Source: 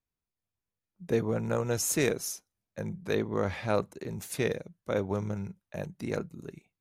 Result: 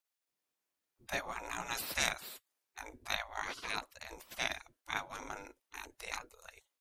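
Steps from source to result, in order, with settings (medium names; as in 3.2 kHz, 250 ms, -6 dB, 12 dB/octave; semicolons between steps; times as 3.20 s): spectral gate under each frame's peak -20 dB weak; trim +5.5 dB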